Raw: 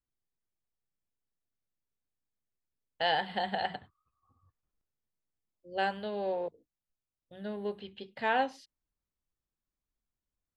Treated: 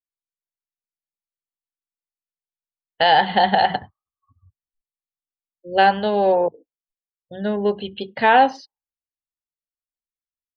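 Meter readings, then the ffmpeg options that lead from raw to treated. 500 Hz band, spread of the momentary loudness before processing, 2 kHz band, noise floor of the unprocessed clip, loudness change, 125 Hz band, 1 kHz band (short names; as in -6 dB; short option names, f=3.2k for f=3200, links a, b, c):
+15.0 dB, 13 LU, +13.5 dB, under -85 dBFS, +15.5 dB, +15.0 dB, +16.5 dB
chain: -af "adynamicequalizer=threshold=0.00562:dfrequency=830:dqfactor=5.5:tfrequency=830:tqfactor=5.5:attack=5:release=100:ratio=0.375:range=3:mode=boostabove:tftype=bell,afftdn=nr=34:nf=-56,alimiter=level_in=19dB:limit=-1dB:release=50:level=0:latency=1,volume=-3.5dB"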